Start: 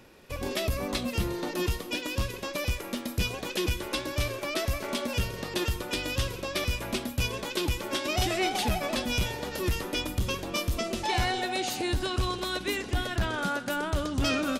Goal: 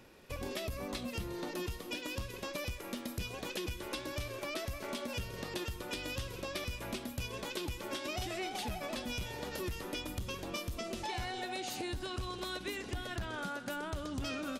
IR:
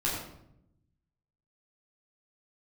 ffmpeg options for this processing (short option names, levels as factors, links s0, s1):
-af "acompressor=threshold=0.0251:ratio=6,volume=0.631"